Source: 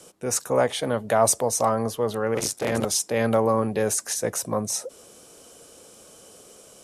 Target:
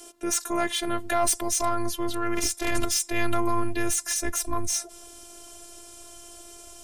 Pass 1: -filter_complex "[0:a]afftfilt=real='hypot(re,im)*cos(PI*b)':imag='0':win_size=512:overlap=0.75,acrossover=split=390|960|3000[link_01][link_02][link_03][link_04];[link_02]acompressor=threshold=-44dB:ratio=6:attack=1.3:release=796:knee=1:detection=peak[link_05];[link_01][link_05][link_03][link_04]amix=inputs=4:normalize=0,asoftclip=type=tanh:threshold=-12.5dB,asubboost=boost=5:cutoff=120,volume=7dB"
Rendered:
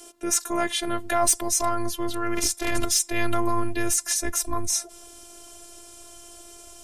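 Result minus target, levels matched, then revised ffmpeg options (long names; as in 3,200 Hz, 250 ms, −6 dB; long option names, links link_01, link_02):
soft clipping: distortion −9 dB
-filter_complex "[0:a]afftfilt=real='hypot(re,im)*cos(PI*b)':imag='0':win_size=512:overlap=0.75,acrossover=split=390|960|3000[link_01][link_02][link_03][link_04];[link_02]acompressor=threshold=-44dB:ratio=6:attack=1.3:release=796:knee=1:detection=peak[link_05];[link_01][link_05][link_03][link_04]amix=inputs=4:normalize=0,asoftclip=type=tanh:threshold=-22.5dB,asubboost=boost=5:cutoff=120,volume=7dB"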